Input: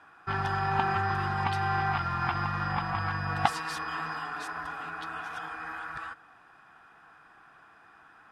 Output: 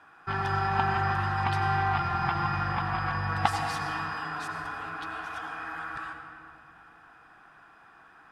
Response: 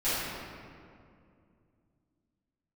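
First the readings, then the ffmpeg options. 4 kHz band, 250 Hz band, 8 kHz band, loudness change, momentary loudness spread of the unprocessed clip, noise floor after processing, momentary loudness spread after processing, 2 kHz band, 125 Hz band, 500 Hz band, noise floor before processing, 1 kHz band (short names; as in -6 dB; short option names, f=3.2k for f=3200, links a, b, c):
+1.0 dB, +1.0 dB, +0.5 dB, +1.5 dB, 10 LU, -55 dBFS, 10 LU, +1.0 dB, +2.0 dB, +1.0 dB, -57 dBFS, +1.5 dB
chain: -filter_complex "[0:a]asplit=2[a][b];[1:a]atrim=start_sample=2205,adelay=80[c];[b][c]afir=irnorm=-1:irlink=0,volume=-16dB[d];[a][d]amix=inputs=2:normalize=0"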